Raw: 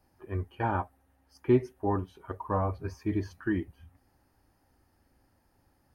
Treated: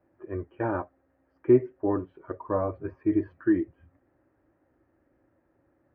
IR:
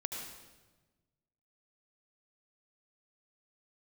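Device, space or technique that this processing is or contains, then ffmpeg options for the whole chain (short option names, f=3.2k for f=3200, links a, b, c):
bass cabinet: -af "highpass=64,equalizer=f=65:t=q:w=4:g=-7,equalizer=f=93:t=q:w=4:g=-4,equalizer=f=200:t=q:w=4:g=-5,equalizer=f=330:t=q:w=4:g=9,equalizer=f=570:t=q:w=4:g=8,equalizer=f=840:t=q:w=4:g=-7,lowpass=f=2.1k:w=0.5412,lowpass=f=2.1k:w=1.3066"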